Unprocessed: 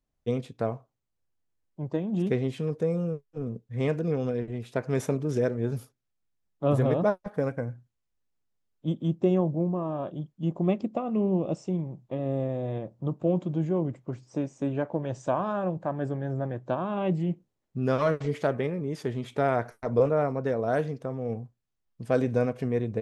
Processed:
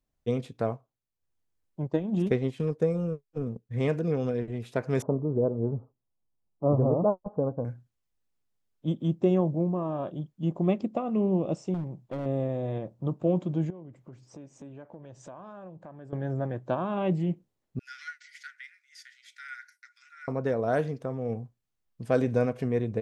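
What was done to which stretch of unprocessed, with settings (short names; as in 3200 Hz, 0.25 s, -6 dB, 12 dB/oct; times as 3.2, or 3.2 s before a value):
0.7–3.79 transient shaper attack +3 dB, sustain -7 dB
5.02–7.65 steep low-pass 1100 Hz 48 dB/oct
11.74–12.26 hard clip -28.5 dBFS
13.7–16.13 compressor 3:1, threshold -47 dBFS
17.79–20.28 rippled Chebyshev high-pass 1400 Hz, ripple 9 dB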